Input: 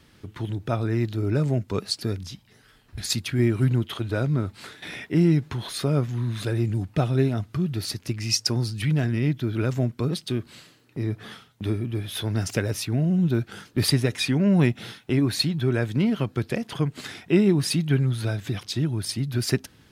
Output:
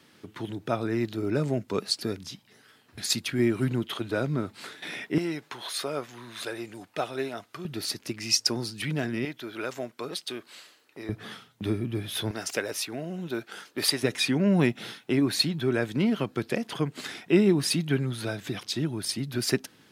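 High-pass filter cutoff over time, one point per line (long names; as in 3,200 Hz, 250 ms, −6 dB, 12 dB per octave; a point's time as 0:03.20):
200 Hz
from 0:05.18 530 Hz
from 0:07.65 250 Hz
from 0:09.25 530 Hz
from 0:11.09 130 Hz
from 0:12.31 430 Hz
from 0:14.03 200 Hz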